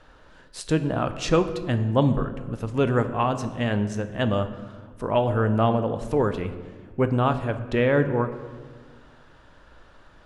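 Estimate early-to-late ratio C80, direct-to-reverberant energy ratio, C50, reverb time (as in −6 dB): 13.0 dB, 9.0 dB, 11.5 dB, 1.7 s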